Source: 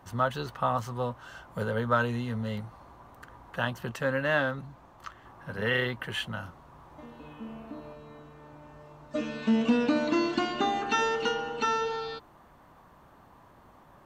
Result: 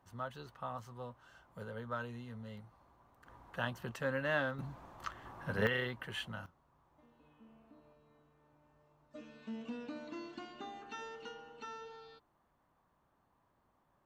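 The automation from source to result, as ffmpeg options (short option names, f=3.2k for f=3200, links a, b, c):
-af "asetnsamples=n=441:p=0,asendcmd='3.26 volume volume -7.5dB;4.59 volume volume 0dB;5.67 volume volume -8.5dB;6.46 volume volume -19.5dB',volume=-15dB"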